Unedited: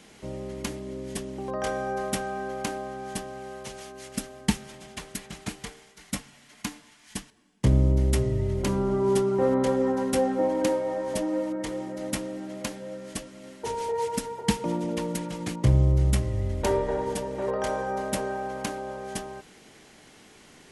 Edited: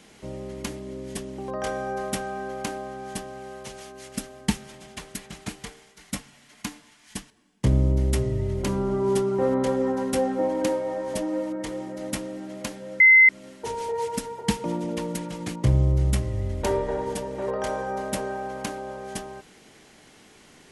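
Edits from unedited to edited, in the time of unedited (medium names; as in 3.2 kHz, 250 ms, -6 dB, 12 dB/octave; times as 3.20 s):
13.00–13.29 s: bleep 2.06 kHz -10 dBFS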